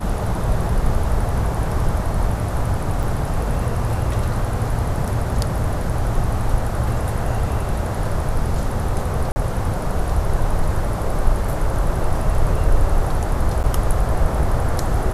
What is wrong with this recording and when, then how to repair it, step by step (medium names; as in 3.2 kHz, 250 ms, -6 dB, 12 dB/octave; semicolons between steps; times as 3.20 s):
3.03 s: dropout 3.6 ms
9.32–9.36 s: dropout 40 ms
13.63–13.64 s: dropout 9.5 ms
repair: interpolate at 3.03 s, 3.6 ms; interpolate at 9.32 s, 40 ms; interpolate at 13.63 s, 9.5 ms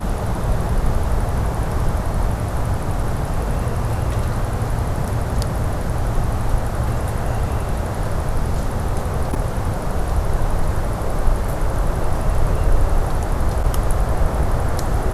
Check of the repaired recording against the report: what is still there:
nothing left